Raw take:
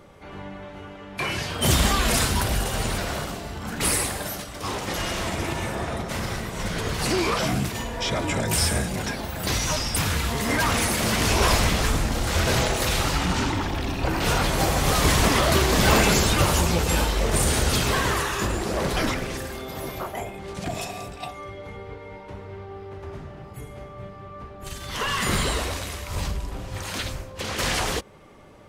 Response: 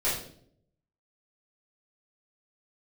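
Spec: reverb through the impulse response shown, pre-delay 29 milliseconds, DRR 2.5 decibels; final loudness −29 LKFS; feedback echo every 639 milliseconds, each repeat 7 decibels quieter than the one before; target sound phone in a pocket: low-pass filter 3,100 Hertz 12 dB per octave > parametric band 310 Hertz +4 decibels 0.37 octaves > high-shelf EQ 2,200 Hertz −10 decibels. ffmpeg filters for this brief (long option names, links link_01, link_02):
-filter_complex "[0:a]aecho=1:1:639|1278|1917|2556|3195:0.447|0.201|0.0905|0.0407|0.0183,asplit=2[link_01][link_02];[1:a]atrim=start_sample=2205,adelay=29[link_03];[link_02][link_03]afir=irnorm=-1:irlink=0,volume=-12.5dB[link_04];[link_01][link_04]amix=inputs=2:normalize=0,lowpass=3100,equalizer=frequency=310:width_type=o:width=0.37:gain=4,highshelf=frequency=2200:gain=-10,volume=-6dB"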